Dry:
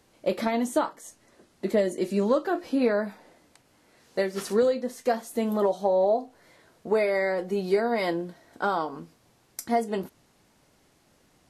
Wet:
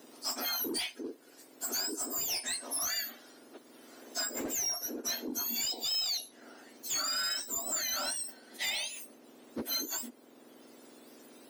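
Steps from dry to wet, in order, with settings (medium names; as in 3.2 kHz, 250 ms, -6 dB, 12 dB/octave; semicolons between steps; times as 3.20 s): spectrum inverted on a logarithmic axis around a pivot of 1.7 kHz; saturation -28.5 dBFS, distortion -11 dB; three bands compressed up and down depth 40%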